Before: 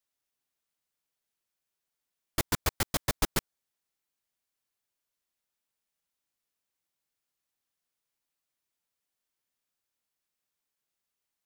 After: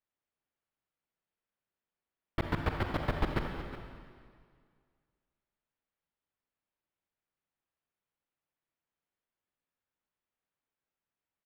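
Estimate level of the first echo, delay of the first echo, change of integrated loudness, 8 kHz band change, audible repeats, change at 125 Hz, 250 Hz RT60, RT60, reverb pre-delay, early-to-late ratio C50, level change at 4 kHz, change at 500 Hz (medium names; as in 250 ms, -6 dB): -14.0 dB, 365 ms, -4.0 dB, -28.0 dB, 1, +1.5 dB, 2.0 s, 1.9 s, 35 ms, 3.5 dB, -10.5 dB, +0.5 dB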